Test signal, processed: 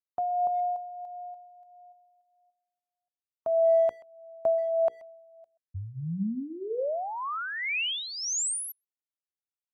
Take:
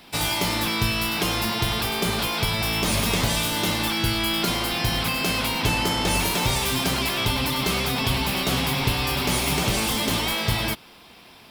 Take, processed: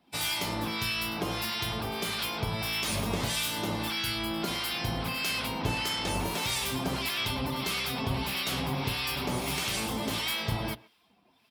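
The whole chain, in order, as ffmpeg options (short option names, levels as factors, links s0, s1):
-filter_complex "[0:a]bandreject=f=60:t=h:w=6,bandreject=f=120:t=h:w=6,bandreject=f=180:t=h:w=6,bandreject=f=240:t=h:w=6,bandreject=f=300:t=h:w=6,bandreject=f=360:t=h:w=6,bandreject=f=420:t=h:w=6,bandreject=f=480:t=h:w=6,afftdn=nr=13:nf=-41,highpass=51,acrossover=split=1200[s0][s1];[s0]aeval=exprs='val(0)*(1-0.7/2+0.7/2*cos(2*PI*1.6*n/s))':c=same[s2];[s1]aeval=exprs='val(0)*(1-0.7/2-0.7/2*cos(2*PI*1.6*n/s))':c=same[s3];[s2][s3]amix=inputs=2:normalize=0,asplit=2[s4][s5];[s5]adelay=130,highpass=300,lowpass=3400,asoftclip=type=hard:threshold=0.106,volume=0.0891[s6];[s4][s6]amix=inputs=2:normalize=0,volume=0.631"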